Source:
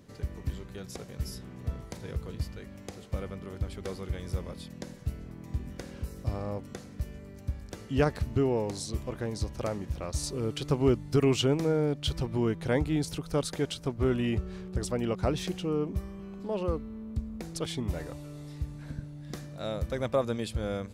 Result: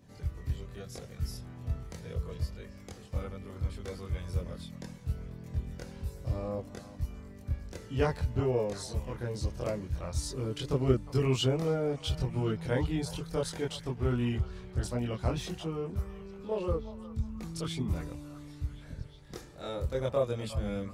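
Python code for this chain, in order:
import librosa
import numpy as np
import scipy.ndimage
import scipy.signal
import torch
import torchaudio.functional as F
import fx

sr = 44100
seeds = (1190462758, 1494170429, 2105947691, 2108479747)

y = fx.chorus_voices(x, sr, voices=4, hz=0.16, base_ms=24, depth_ms=1.2, mix_pct=55)
y = fx.echo_stepped(y, sr, ms=358, hz=890.0, octaves=0.7, feedback_pct=70, wet_db=-11.0)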